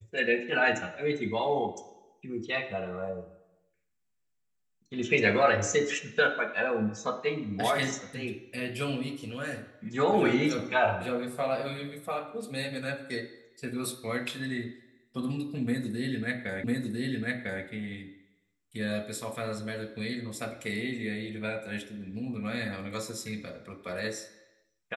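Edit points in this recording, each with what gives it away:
16.64 repeat of the last 1 s

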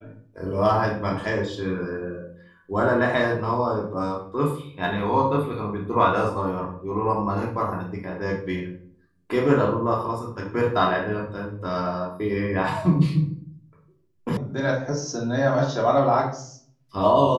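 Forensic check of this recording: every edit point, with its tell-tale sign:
14.37 sound cut off

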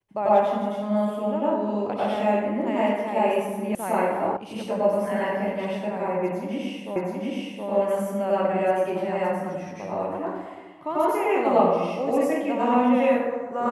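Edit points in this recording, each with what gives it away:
3.75 sound cut off
4.37 sound cut off
6.96 repeat of the last 0.72 s

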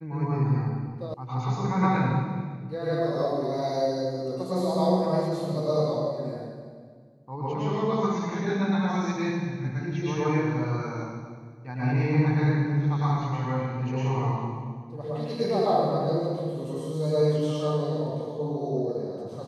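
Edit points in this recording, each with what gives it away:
1.14 sound cut off

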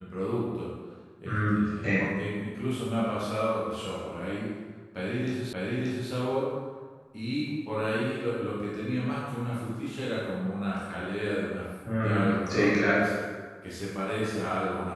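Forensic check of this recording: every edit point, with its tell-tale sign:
5.53 repeat of the last 0.58 s

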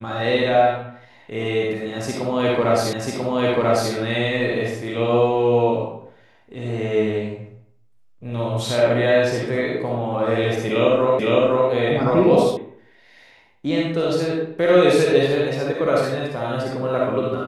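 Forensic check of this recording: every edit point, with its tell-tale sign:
2.93 repeat of the last 0.99 s
11.19 repeat of the last 0.51 s
12.57 sound cut off

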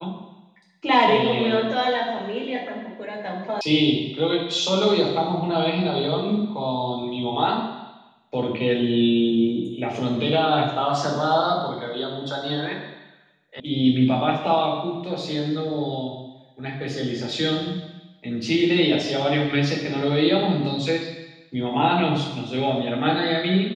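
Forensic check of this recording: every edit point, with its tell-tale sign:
3.61 sound cut off
13.6 sound cut off

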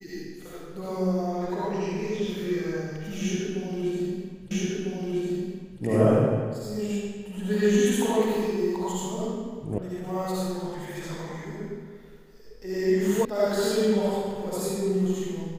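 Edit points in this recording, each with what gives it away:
4.51 repeat of the last 1.3 s
9.78 sound cut off
13.25 sound cut off

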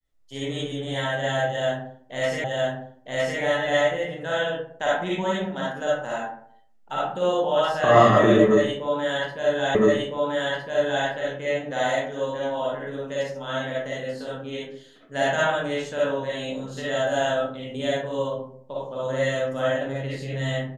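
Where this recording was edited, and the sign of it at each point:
2.44 repeat of the last 0.96 s
9.75 repeat of the last 1.31 s

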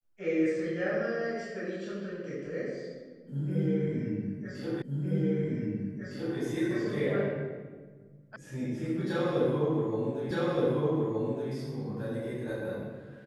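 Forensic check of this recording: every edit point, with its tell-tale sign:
4.82 repeat of the last 1.56 s
8.36 sound cut off
10.31 repeat of the last 1.22 s

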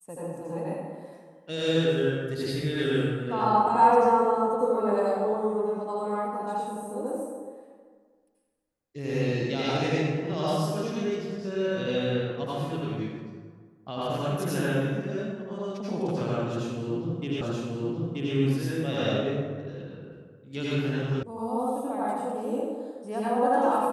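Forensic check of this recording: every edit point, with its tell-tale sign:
17.41 repeat of the last 0.93 s
21.23 sound cut off

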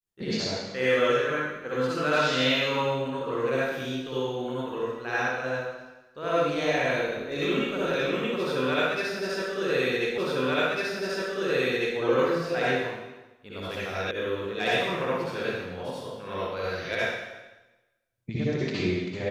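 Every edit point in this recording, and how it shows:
10.18 repeat of the last 1.8 s
14.11 sound cut off

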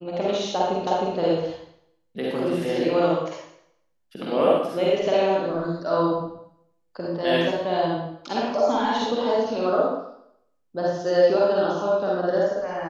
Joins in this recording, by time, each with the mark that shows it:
0.87 repeat of the last 0.31 s

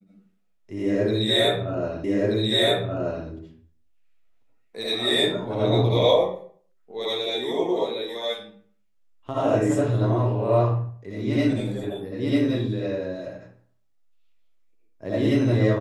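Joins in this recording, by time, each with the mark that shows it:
2.04 repeat of the last 1.23 s

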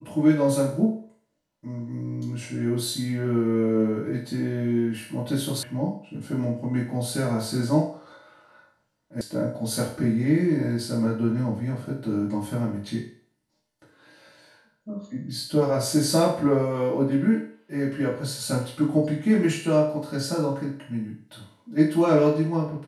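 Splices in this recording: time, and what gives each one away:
5.63 sound cut off
9.21 sound cut off

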